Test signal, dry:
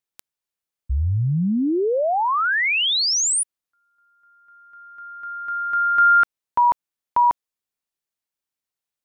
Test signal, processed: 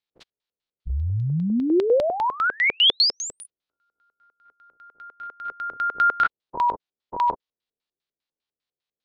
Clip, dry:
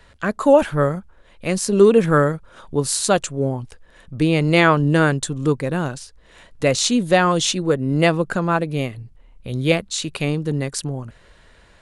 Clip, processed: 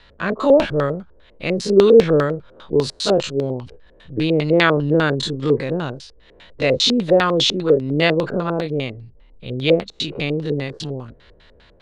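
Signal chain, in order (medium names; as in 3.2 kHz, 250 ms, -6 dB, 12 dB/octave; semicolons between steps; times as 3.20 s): every event in the spectrogram widened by 60 ms; LFO low-pass square 5 Hz 460–3900 Hz; trim -4.5 dB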